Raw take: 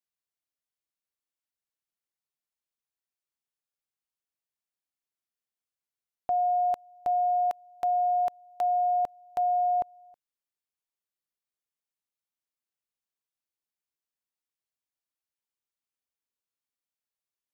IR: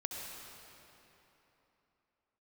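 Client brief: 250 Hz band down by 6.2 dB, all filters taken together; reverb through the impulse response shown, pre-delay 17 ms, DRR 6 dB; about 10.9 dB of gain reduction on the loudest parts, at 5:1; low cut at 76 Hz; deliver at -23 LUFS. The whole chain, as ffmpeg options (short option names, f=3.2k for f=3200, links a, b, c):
-filter_complex "[0:a]highpass=76,equalizer=f=250:t=o:g=-9,acompressor=threshold=-37dB:ratio=5,asplit=2[a][b];[1:a]atrim=start_sample=2205,adelay=17[c];[b][c]afir=irnorm=-1:irlink=0,volume=-7dB[d];[a][d]amix=inputs=2:normalize=0,volume=13.5dB"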